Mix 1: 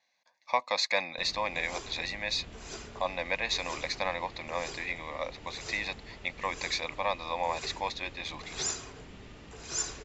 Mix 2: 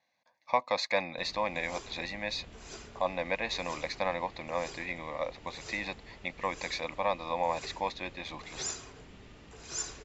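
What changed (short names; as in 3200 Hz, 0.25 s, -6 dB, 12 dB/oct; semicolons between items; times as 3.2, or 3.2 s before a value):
speech: add tilt -2.5 dB/oct; background -3.5 dB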